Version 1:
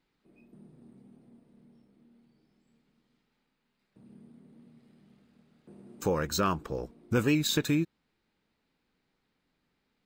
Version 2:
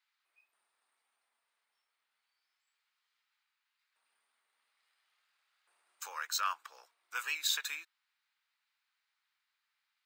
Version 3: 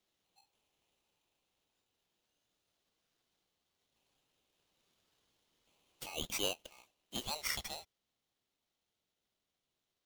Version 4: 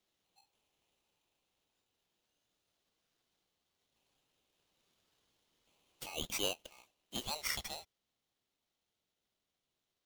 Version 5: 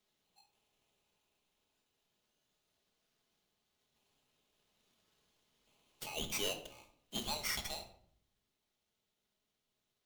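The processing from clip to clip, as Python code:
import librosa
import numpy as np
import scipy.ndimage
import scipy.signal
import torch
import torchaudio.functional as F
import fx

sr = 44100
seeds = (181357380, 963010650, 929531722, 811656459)

y1 = scipy.signal.sosfilt(scipy.signal.butter(4, 1100.0, 'highpass', fs=sr, output='sos'), x)
y1 = y1 * 10.0 ** (-1.5 / 20.0)
y2 = fx.peak_eq(y1, sr, hz=9300.0, db=-9.5, octaves=1.1)
y2 = fx.rider(y2, sr, range_db=10, speed_s=0.5)
y2 = y2 * np.sign(np.sin(2.0 * np.pi * 1700.0 * np.arange(len(y2)) / sr))
y3 = y2
y4 = np.clip(y3, -10.0 ** (-32.5 / 20.0), 10.0 ** (-32.5 / 20.0))
y4 = fx.room_shoebox(y4, sr, seeds[0], volume_m3=1000.0, walls='furnished', distance_m=1.4)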